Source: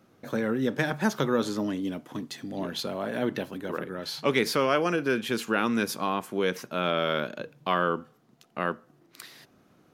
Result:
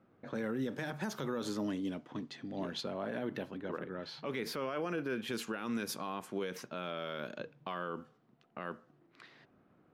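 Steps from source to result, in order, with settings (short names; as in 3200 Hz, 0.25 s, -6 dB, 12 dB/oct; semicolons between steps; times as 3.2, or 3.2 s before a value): low-pass opened by the level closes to 2000 Hz, open at -24.5 dBFS; 2.81–5.28 bell 7600 Hz -7.5 dB 1.9 oct; limiter -21.5 dBFS, peak gain reduction 11.5 dB; gain -6 dB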